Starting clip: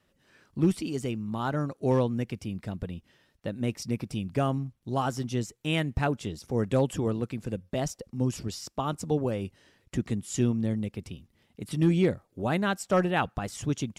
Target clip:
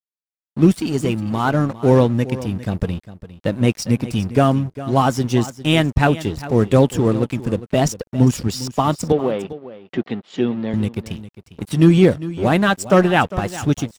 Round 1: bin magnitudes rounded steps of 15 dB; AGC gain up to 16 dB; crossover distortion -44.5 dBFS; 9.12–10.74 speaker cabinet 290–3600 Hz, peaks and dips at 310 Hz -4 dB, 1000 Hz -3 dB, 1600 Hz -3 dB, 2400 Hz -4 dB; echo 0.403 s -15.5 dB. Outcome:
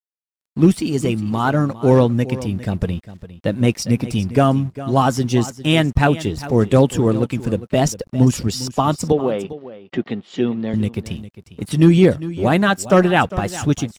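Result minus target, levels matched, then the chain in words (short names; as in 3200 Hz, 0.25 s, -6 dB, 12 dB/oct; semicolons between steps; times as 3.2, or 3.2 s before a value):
crossover distortion: distortion -9 dB
bin magnitudes rounded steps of 15 dB; AGC gain up to 16 dB; crossover distortion -34.5 dBFS; 9.12–10.74 speaker cabinet 290–3600 Hz, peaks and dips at 310 Hz -4 dB, 1000 Hz -3 dB, 1600 Hz -3 dB, 2400 Hz -4 dB; echo 0.403 s -15.5 dB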